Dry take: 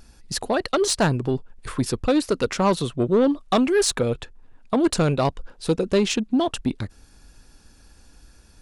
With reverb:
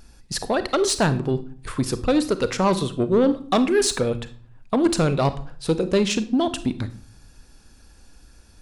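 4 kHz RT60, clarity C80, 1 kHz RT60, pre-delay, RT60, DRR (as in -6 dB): 0.35 s, 19.0 dB, 0.50 s, 33 ms, 0.45 s, 12.0 dB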